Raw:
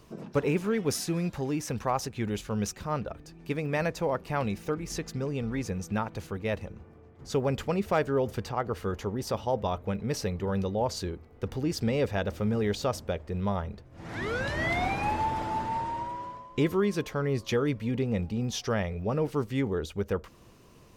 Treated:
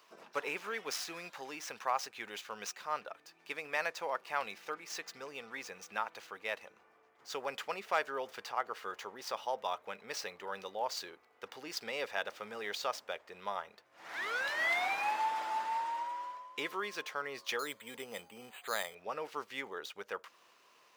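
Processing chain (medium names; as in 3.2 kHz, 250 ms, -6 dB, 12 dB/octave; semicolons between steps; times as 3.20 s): median filter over 5 samples; high-pass 960 Hz 12 dB/octave; 17.59–18.95 s: careless resampling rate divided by 8×, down filtered, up hold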